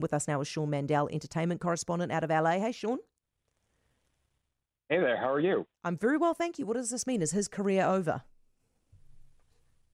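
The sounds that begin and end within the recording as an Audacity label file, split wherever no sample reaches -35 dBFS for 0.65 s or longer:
4.910000	8.180000	sound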